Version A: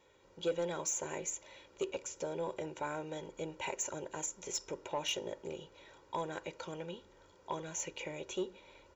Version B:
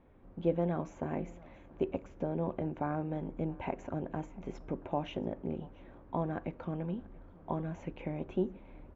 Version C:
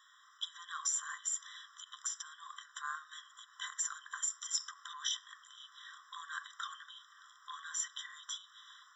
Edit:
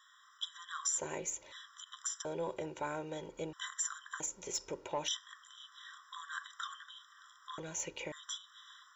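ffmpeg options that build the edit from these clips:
-filter_complex "[0:a]asplit=4[a][b][c][d];[2:a]asplit=5[e][f][g][h][i];[e]atrim=end=0.99[j];[a]atrim=start=0.97:end=1.53[k];[f]atrim=start=1.51:end=2.252[l];[b]atrim=start=2.248:end=3.532[m];[g]atrim=start=3.528:end=4.202[n];[c]atrim=start=4.198:end=5.082[o];[h]atrim=start=5.078:end=7.582[p];[d]atrim=start=7.578:end=8.122[q];[i]atrim=start=8.118[r];[j][k]acrossfade=d=0.02:c1=tri:c2=tri[s];[s][l]acrossfade=d=0.02:c1=tri:c2=tri[t];[t][m]acrossfade=d=0.004:c1=hsin:c2=hsin[u];[u][n]acrossfade=d=0.004:c1=hsin:c2=hsin[v];[v][o]acrossfade=d=0.004:c1=hsin:c2=hsin[w];[w][p]acrossfade=d=0.004:c1=hsin:c2=hsin[x];[x][q]acrossfade=d=0.004:c1=hsin:c2=hsin[y];[y][r]acrossfade=d=0.004:c1=hsin:c2=hsin"

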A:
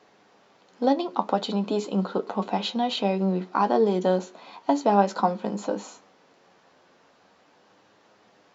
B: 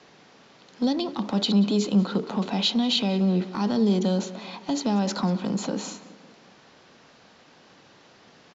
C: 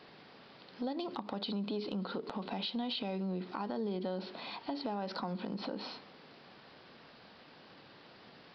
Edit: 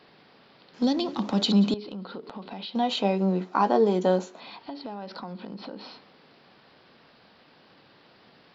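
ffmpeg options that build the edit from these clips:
-filter_complex "[2:a]asplit=3[a][b][c];[a]atrim=end=0.742[d];[1:a]atrim=start=0.738:end=1.742[e];[b]atrim=start=1.738:end=2.752[f];[0:a]atrim=start=2.748:end=4.402[g];[c]atrim=start=4.398[h];[d][e]acrossfade=d=0.004:c1=hsin:c2=hsin[i];[i][f]acrossfade=d=0.004:c1=hsin:c2=hsin[j];[j][g]acrossfade=d=0.004:c1=hsin:c2=hsin[k];[k][h]acrossfade=d=0.004:c1=hsin:c2=hsin"

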